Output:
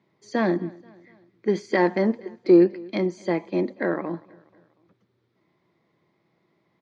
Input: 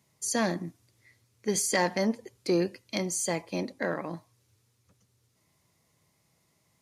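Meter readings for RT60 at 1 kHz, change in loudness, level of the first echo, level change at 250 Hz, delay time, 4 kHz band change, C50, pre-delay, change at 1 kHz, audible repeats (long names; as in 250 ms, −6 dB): no reverb audible, +6.5 dB, −23.5 dB, +9.0 dB, 241 ms, −6.0 dB, no reverb audible, no reverb audible, +3.5 dB, 2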